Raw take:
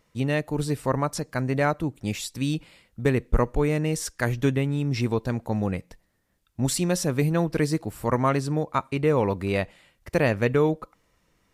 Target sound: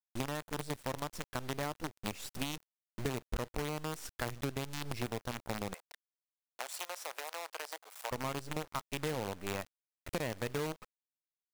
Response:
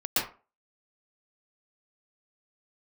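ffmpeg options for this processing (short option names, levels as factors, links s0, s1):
-filter_complex "[0:a]acrusher=bits=4:dc=4:mix=0:aa=0.000001,acompressor=threshold=0.0224:ratio=5,asettb=1/sr,asplit=3[s0][s1][s2];[s0]atrim=end=5.744[s3];[s1]atrim=start=5.74:end=8.11,asetpts=PTS-STARTPTS,afade=t=in:d=0.004:c=qsin,afade=t=out:st=2.366:d=0.004:c=qsin,highpass=f=590:w=0.5412,highpass=f=590:w=1.3066[s4];[s2]atrim=start=8.106[s5];[s3][s4]acrossfade=d=0.004:c1=hsin:c2=qsin[s6];[s6][s5]acrossfade=d=0.004:c1=qsin:c2=hsin,asoftclip=type=tanh:threshold=0.168,volume=0.891"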